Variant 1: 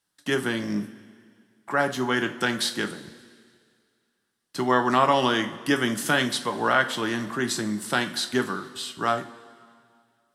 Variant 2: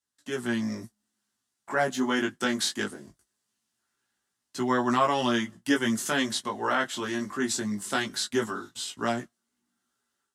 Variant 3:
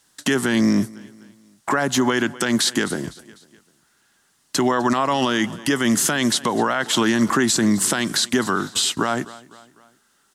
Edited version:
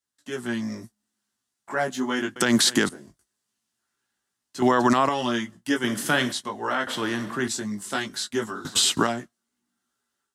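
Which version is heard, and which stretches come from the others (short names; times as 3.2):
2
2.36–2.89 from 3
4.62–5.09 from 3
5.84–6.32 from 1
6.87–7.48 from 1
8.65–9.07 from 3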